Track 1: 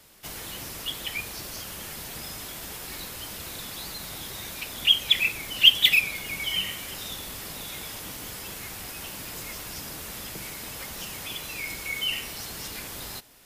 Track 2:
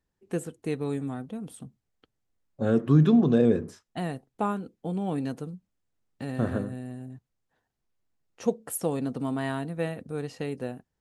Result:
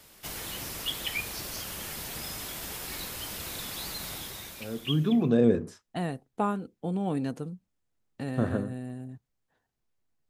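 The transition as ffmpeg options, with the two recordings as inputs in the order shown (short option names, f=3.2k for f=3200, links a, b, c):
-filter_complex "[0:a]apad=whole_dur=10.29,atrim=end=10.29,atrim=end=5.47,asetpts=PTS-STARTPTS[a];[1:a]atrim=start=2.1:end=8.3,asetpts=PTS-STARTPTS[b];[a][b]acrossfade=d=1.38:c1=qua:c2=qua"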